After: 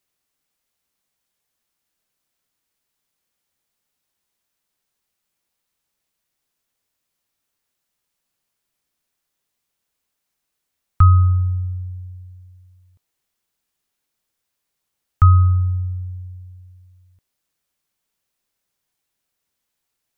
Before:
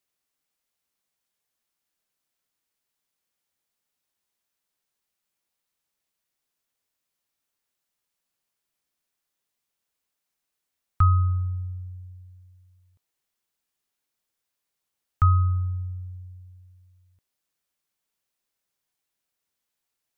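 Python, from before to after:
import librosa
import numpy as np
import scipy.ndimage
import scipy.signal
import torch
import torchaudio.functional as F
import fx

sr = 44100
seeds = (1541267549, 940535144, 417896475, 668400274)

y = fx.low_shelf(x, sr, hz=210.0, db=4.0)
y = y * 10.0 ** (4.5 / 20.0)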